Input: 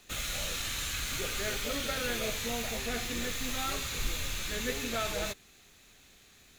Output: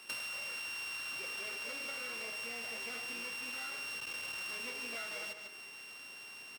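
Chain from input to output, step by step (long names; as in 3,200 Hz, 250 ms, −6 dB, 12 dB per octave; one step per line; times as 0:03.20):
samples sorted by size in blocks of 16 samples
parametric band 680 Hz −2.5 dB
hum removal 70.09 Hz, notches 38
in parallel at −6 dB: bit-depth reduction 6 bits, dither none
on the sum: soft clipping −30 dBFS, distortion −12 dB
reversed playback
upward compression, threshold −50 dBFS
reversed playback
meter weighting curve A
single-tap delay 148 ms −13 dB
downward compressor 12 to 1, threshold −45 dBFS, peak gain reduction 15 dB
notch filter 7,300 Hz, Q 26
level +6.5 dB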